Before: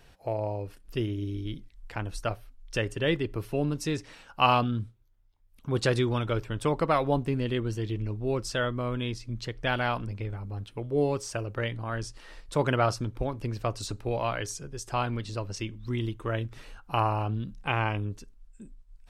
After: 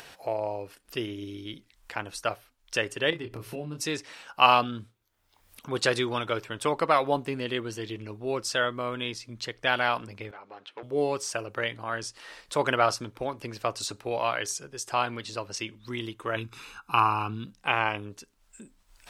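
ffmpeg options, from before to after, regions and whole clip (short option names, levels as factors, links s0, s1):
-filter_complex "[0:a]asettb=1/sr,asplit=3[s0][s1][s2];[s0]atrim=end=3.104[s3];[s1]atrim=start=3.1:end=3.81,asetpts=PTS-STARTPTS,afade=t=in:d=0.004:c=qsin,afade=t=out:st=0.706:d=0.004:c=qsin,equalizer=f=79:w=0.33:g=11.5,acompressor=threshold=0.0316:ratio=4:attack=3.2:release=140:knee=1:detection=peak,asplit=2[s4][s5];[s5]adelay=26,volume=0.531[s6];[s4][s6]amix=inputs=2:normalize=0,atrim=end_sample=31311[s7];[s2]atrim=start=3.806[s8];[s3][s7]acrossfade=d=0.004:c1=hsin:c2=qsin[s9];[s9][s8]acrossfade=d=0.004:c1=qsin:c2=hsin,asettb=1/sr,asplit=3[s10][s11][s12];[s10]atrim=end=10.314[s13];[s11]atrim=start=10.31:end=10.83,asetpts=PTS-STARTPTS,afade=t=in:d=0.004:c=qsin,afade=t=out:st=0.516:d=0.004:c=qsin,volume=29.9,asoftclip=hard,volume=0.0335,highpass=440,lowpass=3600[s14];[s12]atrim=start=10.826[s15];[s13][s14]acrossfade=d=0.004:c1=hsin:c2=qsin[s16];[s16][s15]acrossfade=d=0.004:c1=qsin:c2=hsin,asettb=1/sr,asplit=3[s17][s18][s19];[s17]atrim=end=16.364[s20];[s18]atrim=start=16.36:end=17.46,asetpts=PTS-STARTPTS,afade=t=in:d=0.004:c=qsin,afade=t=out:st=1.096:d=0.004:c=qsin,bandreject=f=550:w=15,aecho=1:1:0.8:0.72,atrim=end_sample=48510[s21];[s19]atrim=start=17.456[s22];[s20][s21]acrossfade=d=0.004:c1=hsin:c2=qsin[s23];[s23][s22]acrossfade=d=0.004:c1=qsin:c2=hsin,highpass=f=670:p=1,acompressor=mode=upward:threshold=0.00562:ratio=2.5,volume=1.78"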